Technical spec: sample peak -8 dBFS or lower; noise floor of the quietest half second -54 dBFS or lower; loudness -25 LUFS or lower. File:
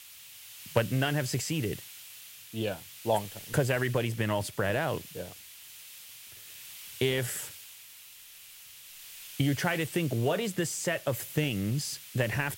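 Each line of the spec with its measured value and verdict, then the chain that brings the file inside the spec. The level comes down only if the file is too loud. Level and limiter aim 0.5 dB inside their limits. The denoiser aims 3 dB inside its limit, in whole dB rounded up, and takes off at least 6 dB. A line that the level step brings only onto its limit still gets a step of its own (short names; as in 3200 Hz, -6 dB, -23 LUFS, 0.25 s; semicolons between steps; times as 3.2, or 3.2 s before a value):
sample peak -10.0 dBFS: OK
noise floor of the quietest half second -51 dBFS: fail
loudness -31.0 LUFS: OK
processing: denoiser 6 dB, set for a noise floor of -51 dBFS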